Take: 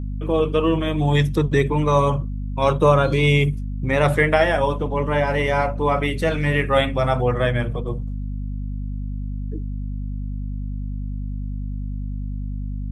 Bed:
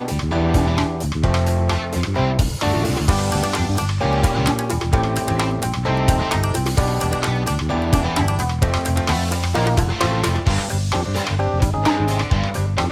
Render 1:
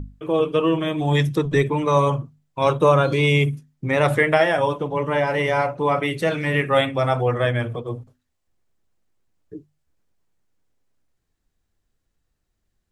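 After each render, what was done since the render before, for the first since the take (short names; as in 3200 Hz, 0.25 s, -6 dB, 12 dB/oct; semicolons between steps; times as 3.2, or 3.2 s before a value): notches 50/100/150/200/250 Hz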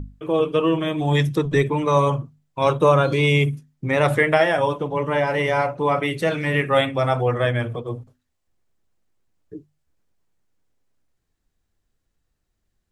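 nothing audible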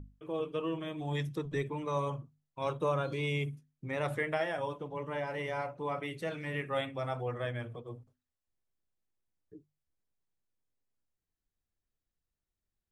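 gain -15.5 dB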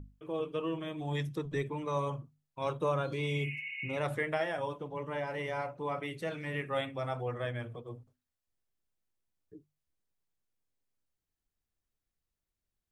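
3.26–3.94 spectral repair 1500–3000 Hz before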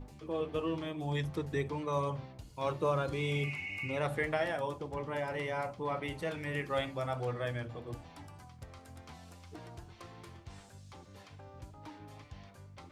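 add bed -32 dB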